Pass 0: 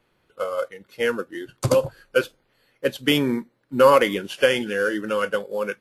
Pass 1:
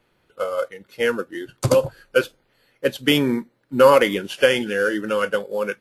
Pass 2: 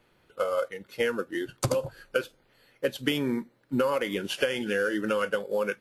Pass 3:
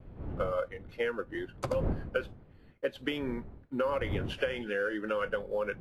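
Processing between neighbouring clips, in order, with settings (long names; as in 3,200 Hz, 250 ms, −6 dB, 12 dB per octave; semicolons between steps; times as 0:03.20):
notch filter 1,100 Hz, Q 24; level +2 dB
downward compressor 10 to 1, threshold −23 dBFS, peak gain reduction 15.5 dB
wind on the microphone 120 Hz −30 dBFS; bass and treble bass −8 dB, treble −15 dB; downward expander −48 dBFS; level −4 dB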